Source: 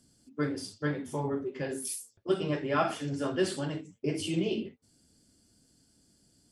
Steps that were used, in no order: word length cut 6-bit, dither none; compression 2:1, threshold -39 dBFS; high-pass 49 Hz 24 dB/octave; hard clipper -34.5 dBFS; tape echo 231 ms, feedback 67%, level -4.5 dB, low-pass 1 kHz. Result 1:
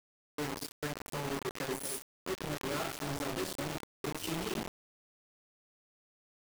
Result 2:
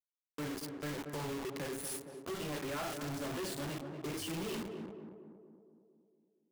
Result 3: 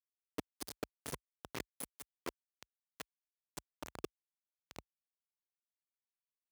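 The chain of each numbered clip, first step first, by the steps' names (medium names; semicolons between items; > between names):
compression > hard clipper > high-pass > tape echo > word length cut; high-pass > word length cut > tape echo > hard clipper > compression; tape echo > hard clipper > compression > word length cut > high-pass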